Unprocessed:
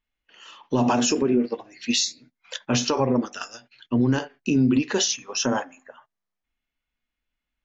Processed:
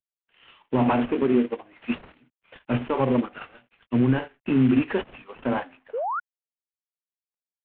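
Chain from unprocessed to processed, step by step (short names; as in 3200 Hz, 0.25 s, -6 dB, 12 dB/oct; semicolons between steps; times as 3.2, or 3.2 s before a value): CVSD 16 kbps; painted sound rise, 5.93–6.2, 420–1500 Hz -25 dBFS; three-band expander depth 40%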